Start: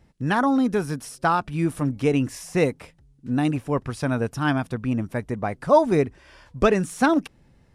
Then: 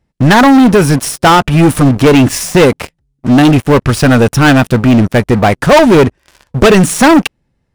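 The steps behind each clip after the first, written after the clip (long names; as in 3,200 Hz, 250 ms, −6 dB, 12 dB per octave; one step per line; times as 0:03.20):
dynamic equaliser 2,800 Hz, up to +4 dB, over −46 dBFS, Q 2.7
leveller curve on the samples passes 5
level +3.5 dB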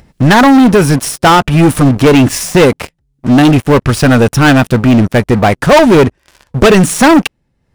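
upward compression, threshold −28 dBFS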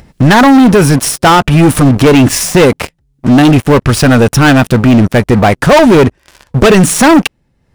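brickwall limiter −6 dBFS, peak gain reduction 5 dB
level +4.5 dB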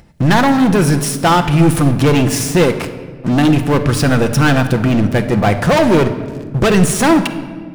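rectangular room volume 1,900 cubic metres, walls mixed, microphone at 0.78 metres
level −7 dB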